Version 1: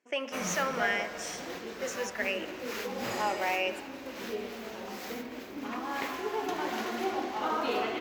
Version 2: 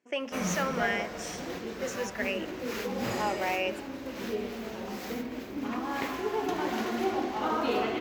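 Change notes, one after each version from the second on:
speech: send -8.0 dB; master: add low shelf 270 Hz +10 dB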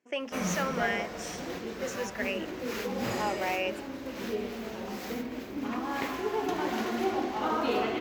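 reverb: off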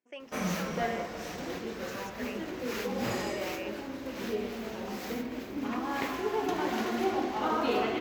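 speech -11.0 dB

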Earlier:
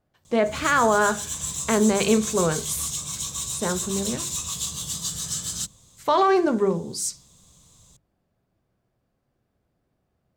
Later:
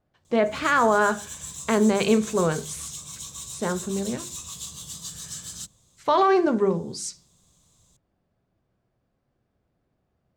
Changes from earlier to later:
speech: add air absorption 59 m; background -7.5 dB

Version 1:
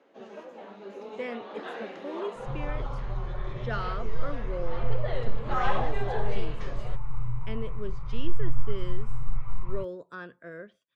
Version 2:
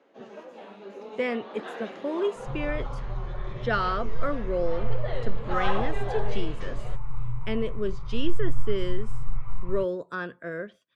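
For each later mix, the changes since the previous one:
speech +8.0 dB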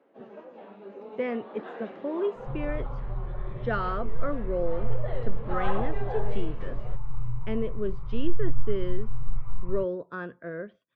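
master: add tape spacing loss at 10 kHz 31 dB

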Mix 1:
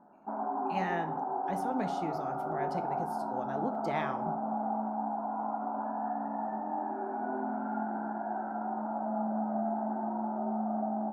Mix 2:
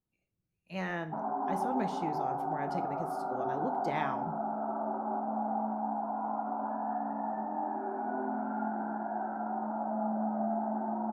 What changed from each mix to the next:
background: entry +0.85 s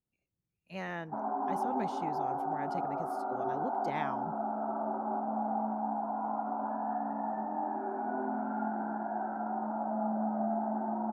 reverb: off

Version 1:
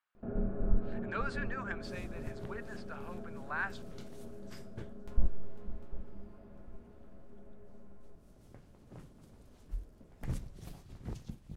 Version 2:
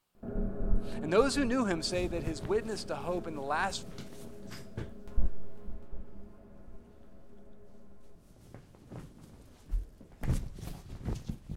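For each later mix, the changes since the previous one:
speech: remove band-pass 1600 Hz, Q 2.6; second sound +6.0 dB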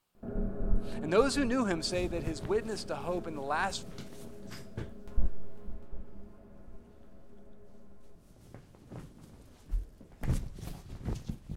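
none

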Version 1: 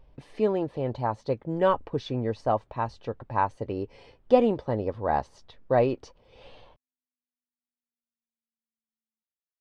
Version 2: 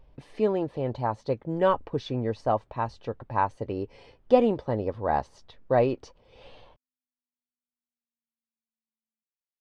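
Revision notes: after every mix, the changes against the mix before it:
none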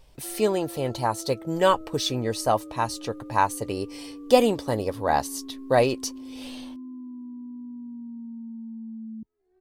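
background: remove inverse Chebyshev high-pass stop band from 950 Hz, stop band 60 dB; master: remove tape spacing loss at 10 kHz 38 dB

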